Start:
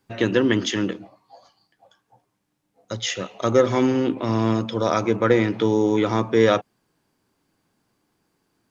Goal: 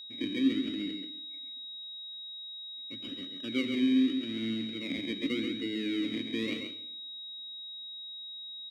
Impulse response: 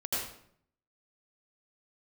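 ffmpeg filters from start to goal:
-filter_complex "[0:a]acrusher=samples=25:mix=1:aa=0.000001:lfo=1:lforange=15:lforate=0.84,asplit=3[link_01][link_02][link_03];[link_01]bandpass=frequency=270:width_type=q:width=8,volume=0dB[link_04];[link_02]bandpass=frequency=2290:width_type=q:width=8,volume=-6dB[link_05];[link_03]bandpass=frequency=3010:width_type=q:width=8,volume=-9dB[link_06];[link_04][link_05][link_06]amix=inputs=3:normalize=0,aeval=exprs='val(0)+0.01*sin(2*PI*3800*n/s)':channel_layout=same,aecho=1:1:135:0.501,asplit=2[link_07][link_08];[1:a]atrim=start_sample=2205[link_09];[link_08][link_09]afir=irnorm=-1:irlink=0,volume=-18.5dB[link_10];[link_07][link_10]amix=inputs=2:normalize=0,volume=-3.5dB"

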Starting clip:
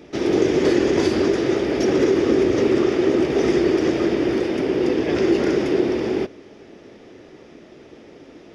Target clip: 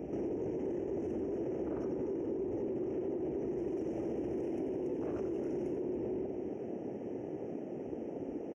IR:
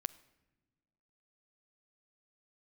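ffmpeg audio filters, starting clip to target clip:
-filter_complex "[0:a]asuperstop=centerf=4100:order=12:qfactor=1.7,acontrast=79,alimiter=limit=-22.5dB:level=0:latency=1:release=47,afwtdn=0.0251,asettb=1/sr,asplit=3[link_01][link_02][link_03];[link_01]atrim=end=3.574[link_04];[link_02]atrim=start=3.57:end=5.76,asetpts=PTS-STARTPTS,afade=type=in:duration=0.004:curve=qsin,afade=type=out:start_time=2.186:duration=0.004:curve=qsin,highshelf=frequency=4900:gain=12[link_05];[link_03]atrim=start=5.756[link_06];[link_04][link_05]acrossfade=duration=0.004:curve1=hsin:curve2=qsin[link_07];[link_07][link_06]acrossfade=duration=0.004:curve1=qsin:curve2=hsin,aecho=1:1:89|281:0.398|0.251,acompressor=threshold=-30dB:ratio=6,volume=-3.5dB"

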